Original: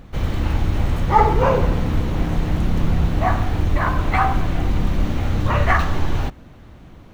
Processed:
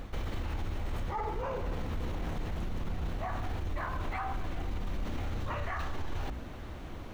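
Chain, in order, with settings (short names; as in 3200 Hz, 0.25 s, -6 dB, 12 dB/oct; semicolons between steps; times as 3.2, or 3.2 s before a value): reverse; compressor, threshold -25 dBFS, peak gain reduction 16 dB; reverse; bell 150 Hz -6.5 dB 1.1 oct; notches 60/120/180/240/300 Hz; limiter -29.5 dBFS, peak gain reduction 12 dB; gain +2.5 dB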